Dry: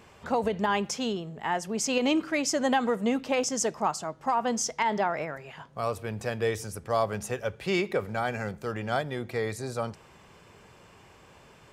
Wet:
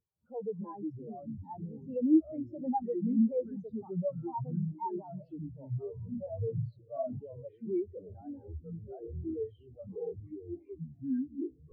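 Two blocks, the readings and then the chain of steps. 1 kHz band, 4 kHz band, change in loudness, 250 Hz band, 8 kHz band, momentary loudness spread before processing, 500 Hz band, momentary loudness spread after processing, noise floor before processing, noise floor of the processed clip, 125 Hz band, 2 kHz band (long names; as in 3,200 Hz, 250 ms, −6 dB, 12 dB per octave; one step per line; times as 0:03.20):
−12.5 dB, below −40 dB, −7.0 dB, −1.0 dB, below −40 dB, 8 LU, −8.0 dB, 16 LU, −55 dBFS, −61 dBFS, −1.0 dB, below −40 dB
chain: on a send: echo through a band-pass that steps 407 ms, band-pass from 250 Hz, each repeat 1.4 octaves, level −11.5 dB
on the sum: delay with pitch and tempo change per echo 164 ms, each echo −6 semitones, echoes 3
low-pass filter 3,700 Hz 6 dB per octave
power curve on the samples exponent 0.35
every bin expanded away from the loudest bin 4 to 1
level −5.5 dB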